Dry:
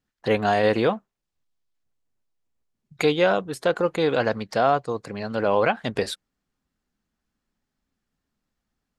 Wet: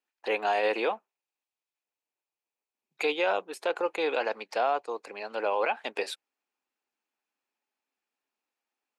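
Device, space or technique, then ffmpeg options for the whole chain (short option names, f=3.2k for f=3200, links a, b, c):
laptop speaker: -af "highpass=f=340:w=0.5412,highpass=f=340:w=1.3066,equalizer=f=870:t=o:w=0.37:g=7,equalizer=f=2.5k:t=o:w=0.31:g=10.5,alimiter=limit=-11dB:level=0:latency=1:release=11,volume=-6.5dB"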